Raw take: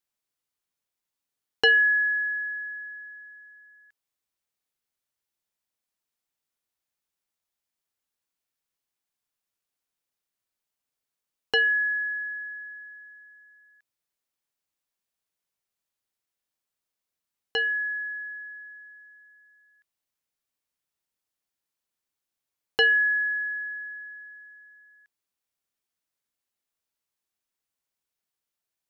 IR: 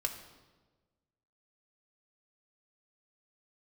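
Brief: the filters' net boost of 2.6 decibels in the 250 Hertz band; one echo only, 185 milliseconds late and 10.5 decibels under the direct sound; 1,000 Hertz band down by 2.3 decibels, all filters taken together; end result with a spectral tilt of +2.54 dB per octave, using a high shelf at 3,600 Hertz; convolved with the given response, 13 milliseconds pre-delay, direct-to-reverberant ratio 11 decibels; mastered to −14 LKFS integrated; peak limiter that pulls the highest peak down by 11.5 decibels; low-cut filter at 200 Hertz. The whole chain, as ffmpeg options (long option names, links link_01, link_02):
-filter_complex "[0:a]highpass=200,equalizer=frequency=250:width_type=o:gain=5.5,equalizer=frequency=1000:width_type=o:gain=-3.5,highshelf=frequency=3600:gain=-4.5,alimiter=limit=-24dB:level=0:latency=1,aecho=1:1:185:0.299,asplit=2[link_01][link_02];[1:a]atrim=start_sample=2205,adelay=13[link_03];[link_02][link_03]afir=irnorm=-1:irlink=0,volume=-13.5dB[link_04];[link_01][link_04]amix=inputs=2:normalize=0,volume=14.5dB"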